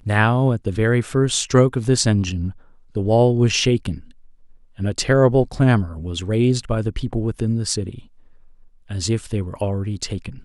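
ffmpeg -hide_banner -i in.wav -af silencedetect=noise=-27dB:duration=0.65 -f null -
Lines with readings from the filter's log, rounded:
silence_start: 3.98
silence_end: 4.79 | silence_duration: 0.81
silence_start: 7.95
silence_end: 8.91 | silence_duration: 0.96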